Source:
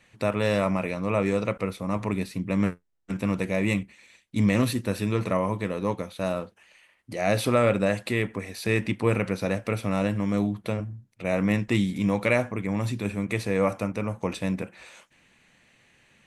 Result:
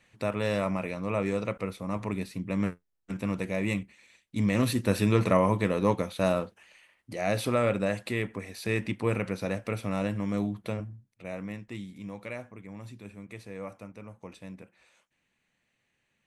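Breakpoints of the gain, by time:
4.49 s -4.5 dB
4.92 s +2.5 dB
6.26 s +2.5 dB
7.32 s -4.5 dB
10.81 s -4.5 dB
11.6 s -16 dB

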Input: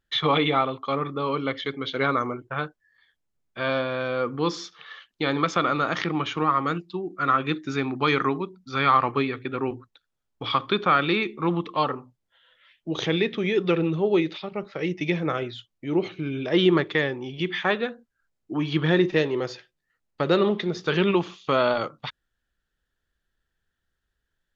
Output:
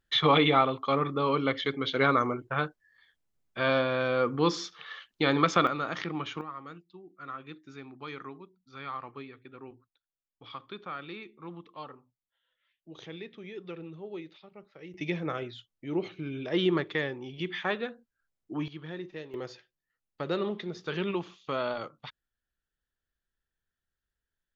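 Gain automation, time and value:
-0.5 dB
from 5.67 s -8 dB
from 6.41 s -19 dB
from 14.94 s -7 dB
from 18.68 s -19.5 dB
from 19.34 s -10 dB

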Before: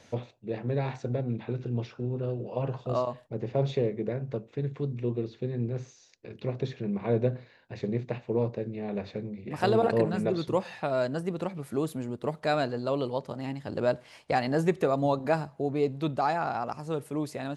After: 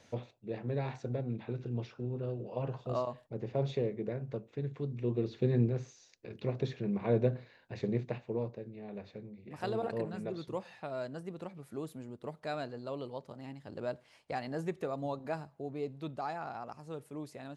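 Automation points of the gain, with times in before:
4.92 s -5.5 dB
5.56 s +4.5 dB
5.79 s -2.5 dB
7.98 s -2.5 dB
8.62 s -11 dB

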